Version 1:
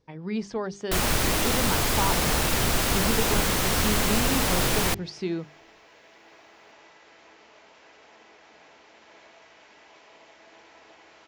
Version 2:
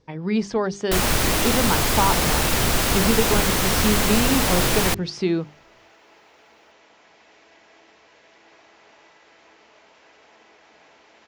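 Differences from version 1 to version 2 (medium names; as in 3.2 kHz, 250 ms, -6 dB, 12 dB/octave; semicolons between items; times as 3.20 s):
speech +7.5 dB; first sound +3.5 dB; second sound: entry +2.20 s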